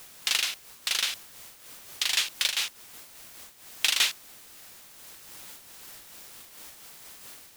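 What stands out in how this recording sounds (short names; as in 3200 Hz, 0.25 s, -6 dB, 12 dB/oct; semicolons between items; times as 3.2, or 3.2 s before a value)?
a quantiser's noise floor 8-bit, dither triangular; noise-modulated level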